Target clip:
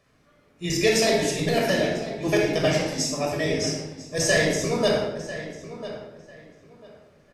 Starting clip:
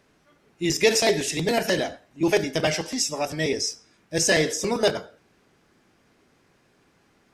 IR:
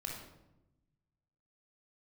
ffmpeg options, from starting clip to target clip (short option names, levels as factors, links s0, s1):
-filter_complex "[0:a]asplit=2[s0][s1];[s1]adelay=996,lowpass=f=3400:p=1,volume=0.224,asplit=2[s2][s3];[s3]adelay=996,lowpass=f=3400:p=1,volume=0.23,asplit=2[s4][s5];[s5]adelay=996,lowpass=f=3400:p=1,volume=0.23[s6];[s0][s2][s4][s6]amix=inputs=4:normalize=0[s7];[1:a]atrim=start_sample=2205,asetrate=41895,aresample=44100[s8];[s7][s8]afir=irnorm=-1:irlink=0"